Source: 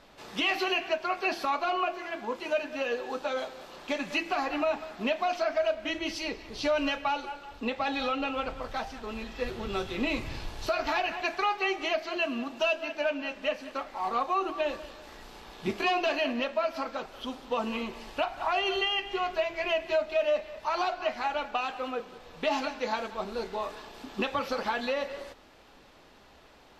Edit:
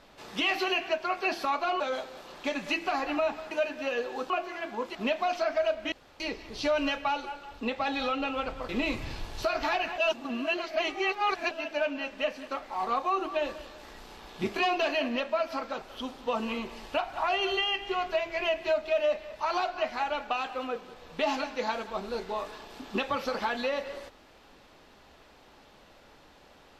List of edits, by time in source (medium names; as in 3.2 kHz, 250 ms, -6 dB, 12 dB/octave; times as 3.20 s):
1.80–2.45 s: swap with 3.24–4.95 s
5.92–6.20 s: room tone
8.69–9.93 s: delete
11.22–12.75 s: reverse